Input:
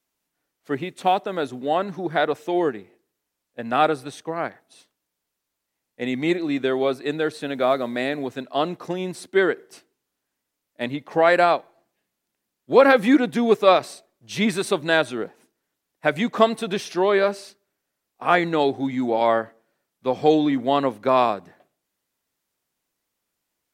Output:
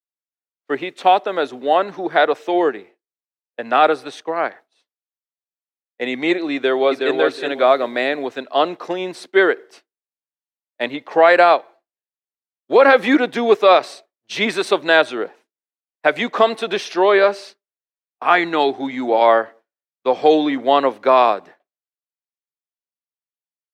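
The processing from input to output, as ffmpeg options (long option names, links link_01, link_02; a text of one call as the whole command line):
ffmpeg -i in.wav -filter_complex "[0:a]asplit=2[link_01][link_02];[link_02]afade=type=in:start_time=6.54:duration=0.01,afade=type=out:start_time=7.15:duration=0.01,aecho=0:1:370|740|1110:0.630957|0.126191|0.0252383[link_03];[link_01][link_03]amix=inputs=2:normalize=0,asettb=1/sr,asplit=3[link_04][link_05][link_06];[link_04]atrim=end=18.234[link_07];[link_05]atrim=start=18.23:end=18.8,asetpts=PTS-STARTPTS,afade=type=in:duration=0.004:curve=qsin,afade=type=out:start_time=0.566:duration=0.004:curve=qsin,equalizer=frequency=530:width_type=o:width=0.33:gain=-10.5[link_08];[link_06]atrim=start=18.796[link_09];[link_07][link_08]acrossfade=duration=0.004:curve1=hsin:curve2=qsin[link_10];[link_10][link_09]acrossfade=duration=0.004:curve1=qsin:curve2=hsin,agate=range=-33dB:threshold=-40dB:ratio=3:detection=peak,acrossover=split=310 5500:gain=0.112 1 0.224[link_11][link_12][link_13];[link_11][link_12][link_13]amix=inputs=3:normalize=0,alimiter=level_in=8dB:limit=-1dB:release=50:level=0:latency=1,volume=-1dB" out.wav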